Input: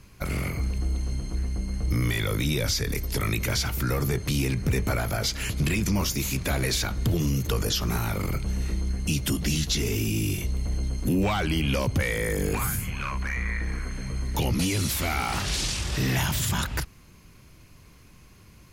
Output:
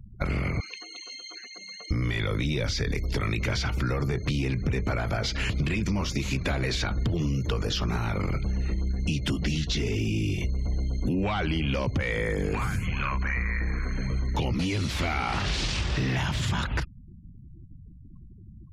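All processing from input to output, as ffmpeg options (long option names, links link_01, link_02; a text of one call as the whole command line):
ffmpeg -i in.wav -filter_complex "[0:a]asettb=1/sr,asplit=3[link_01][link_02][link_03];[link_01]atrim=end=0.604[link_04];[link_02]atrim=start=0.6:end=1.91,asetpts=PTS-STARTPTS,afade=type=in:duration=0.004:curve=qsin,afade=type=out:start_time=1.306:duration=0.004:curve=qsin,highpass=490,lowpass=5800,tiltshelf=frequency=1400:gain=-10[link_05];[link_03]atrim=start=1.906[link_06];[link_04][link_05]acrossfade=duration=0.004:curve1=hsin:curve2=qsin[link_07];[link_07][link_06]acrossfade=duration=0.004:curve1=qsin:curve2=hsin,afftfilt=real='re*gte(hypot(re,im),0.00708)':imag='im*gte(hypot(re,im),0.00708)':win_size=1024:overlap=0.75,lowpass=4100,acompressor=threshold=-30dB:ratio=6,volume=6dB" out.wav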